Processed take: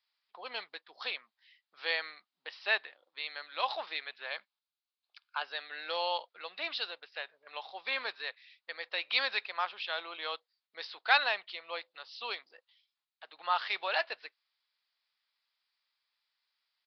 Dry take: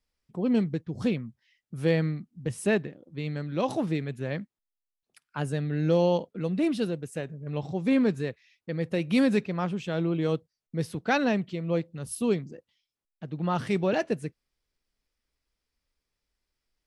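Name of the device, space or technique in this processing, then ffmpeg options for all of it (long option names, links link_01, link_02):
musical greeting card: -filter_complex "[0:a]aresample=11025,aresample=44100,highpass=frequency=840:width=0.5412,highpass=frequency=840:width=1.3066,equalizer=frequency=3900:width_type=o:width=0.55:gain=6.5,asettb=1/sr,asplit=3[link_01][link_02][link_03];[link_01]atrim=end=4.304[link_04];[link_02]atrim=start=4.3:end=5.43,asetpts=PTS-STARTPTS,afade=type=in:duration=0.004:curve=qsin,afade=type=out:start_time=1.126:duration=0.004:curve=qsin,bandreject=frequency=1900:width=7.4[link_05];[link_03]atrim=start=5.426[link_06];[link_04][link_05]acrossfade=duration=0.004:curve1=hsin:curve2=qsin[link_07];[link_07][link_06]acrossfade=duration=0.004:curve1=qsin:curve2=hsin,volume=2.5dB"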